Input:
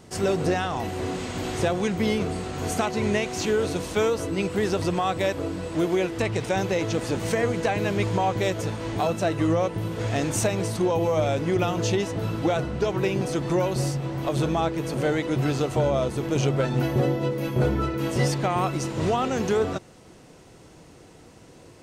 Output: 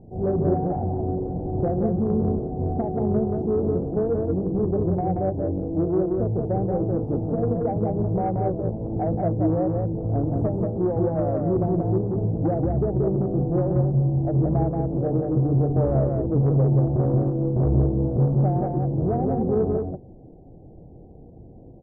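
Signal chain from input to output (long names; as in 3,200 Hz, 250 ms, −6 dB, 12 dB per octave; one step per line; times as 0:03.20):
elliptic low-pass filter 790 Hz, stop band 40 dB
spectral tilt −3 dB per octave
mains-hum notches 50/100/150/200/250/300/350/400/450/500 Hz
soft clipping −11.5 dBFS, distortion −20 dB
on a send: single-tap delay 180 ms −3.5 dB
on the sum: level −2.5 dB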